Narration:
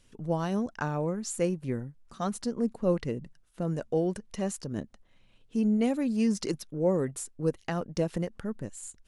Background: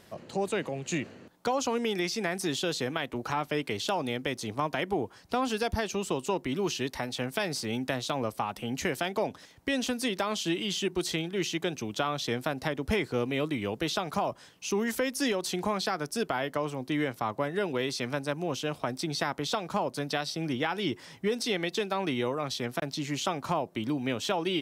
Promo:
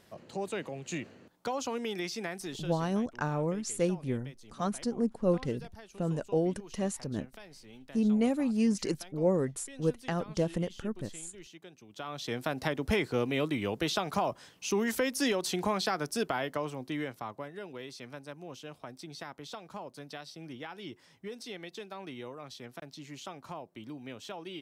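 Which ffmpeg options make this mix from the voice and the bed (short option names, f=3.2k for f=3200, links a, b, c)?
-filter_complex "[0:a]adelay=2400,volume=-1dB[a];[1:a]volume=14dB,afade=t=out:st=2.19:d=0.68:silence=0.188365,afade=t=in:st=11.88:d=0.73:silence=0.105925,afade=t=out:st=16.09:d=1.46:silence=0.237137[b];[a][b]amix=inputs=2:normalize=0"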